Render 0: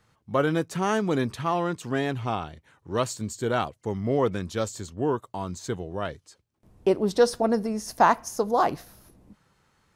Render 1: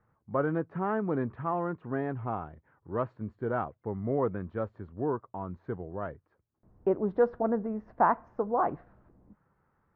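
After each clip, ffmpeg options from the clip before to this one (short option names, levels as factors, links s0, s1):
-af "lowpass=f=1600:w=0.5412,lowpass=f=1600:w=1.3066,volume=0.562"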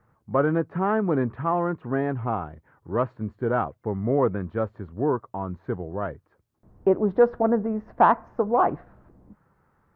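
-af "acontrast=75"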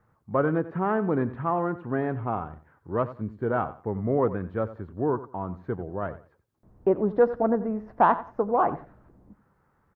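-af "aecho=1:1:90|180:0.178|0.0391,volume=0.794"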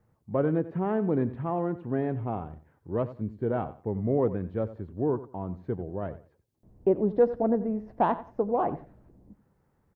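-af "equalizer=f=1300:w=1.2:g=-11.5"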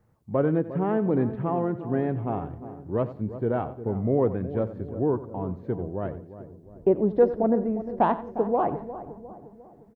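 -filter_complex "[0:a]asplit=2[s0][s1];[s1]adelay=354,lowpass=f=970:p=1,volume=0.251,asplit=2[s2][s3];[s3]adelay=354,lowpass=f=970:p=1,volume=0.55,asplit=2[s4][s5];[s5]adelay=354,lowpass=f=970:p=1,volume=0.55,asplit=2[s6][s7];[s7]adelay=354,lowpass=f=970:p=1,volume=0.55,asplit=2[s8][s9];[s9]adelay=354,lowpass=f=970:p=1,volume=0.55,asplit=2[s10][s11];[s11]adelay=354,lowpass=f=970:p=1,volume=0.55[s12];[s0][s2][s4][s6][s8][s10][s12]amix=inputs=7:normalize=0,volume=1.33"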